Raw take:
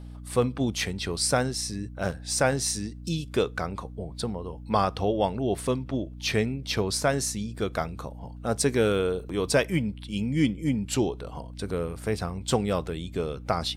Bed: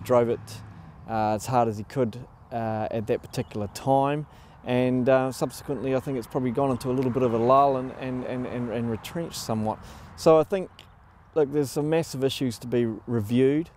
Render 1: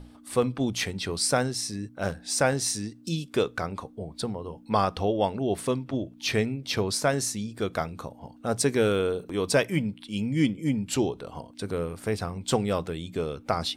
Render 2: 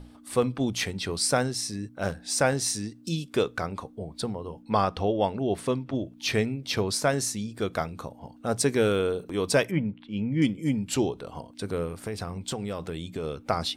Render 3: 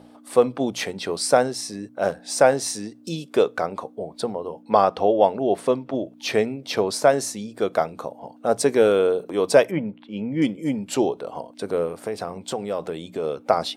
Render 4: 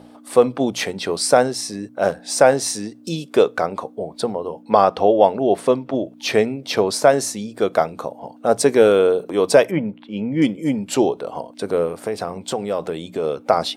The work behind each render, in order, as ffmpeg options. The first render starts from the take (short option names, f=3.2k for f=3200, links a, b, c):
-af "bandreject=f=60:t=h:w=6,bandreject=f=120:t=h:w=6,bandreject=f=180:t=h:w=6"
-filter_complex "[0:a]asettb=1/sr,asplit=3[a][b][c];[a]atrim=end=4.624[d];[b]atrim=start=4.62:end=5.95,asetpts=PTS-STARTPTS,afade=t=in:d=0.004:c=qsin,afade=t=out:st=1.326:d=0.004:c=qsin,highshelf=f=7.7k:g=-8[e];[c]atrim=start=5.946[f];[d][e]acrossfade=d=0.004:c1=hsin:c2=qsin[g];[g][f]acrossfade=d=0.004:c1=qsin:c2=hsin,asettb=1/sr,asplit=3[h][i][j];[h]atrim=end=9.714[k];[i]atrim=start=9.71:end=10.42,asetpts=PTS-STARTPTS,afade=t=in:d=0.004:c=qsin,afade=t=out:st=0.706:d=0.004:c=qsin,lowpass=2.1k[l];[j]atrim=start=10.416[m];[k][l]acrossfade=d=0.004:c1=hsin:c2=qsin[n];[n][m]acrossfade=d=0.004:c1=qsin:c2=hsin,asettb=1/sr,asplit=3[o][p][q];[o]atrim=end=11.954[r];[p]atrim=start=11.95:end=13.24,asetpts=PTS-STARTPTS,afade=t=in:d=0.004:c=qsin,afade=t=out:st=1.286:d=0.004:c=qsin,acompressor=threshold=-28dB:ratio=6:attack=3.2:release=140:knee=1:detection=peak[s];[q]atrim=start=13.236[t];[r][s]acrossfade=d=0.004:c1=hsin:c2=qsin[u];[u][t]acrossfade=d=0.004:c1=qsin:c2=hsin"
-af "highpass=170,equalizer=f=620:t=o:w=1.6:g=10"
-af "volume=4dB,alimiter=limit=-1dB:level=0:latency=1"